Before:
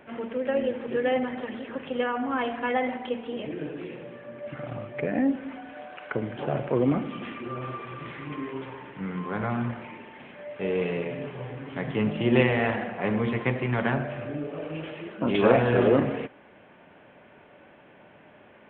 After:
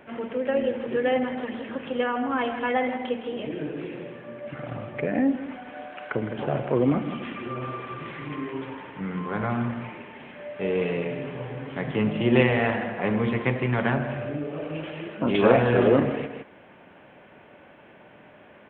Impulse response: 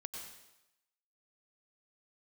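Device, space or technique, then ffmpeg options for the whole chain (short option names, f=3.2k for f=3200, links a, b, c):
ducked delay: -filter_complex "[0:a]asplit=3[a][b][c];[b]adelay=161,volume=-6.5dB[d];[c]apad=whole_len=831764[e];[d][e]sidechaincompress=threshold=-35dB:ratio=8:attack=48:release=193[f];[a][f]amix=inputs=2:normalize=0,volume=1.5dB"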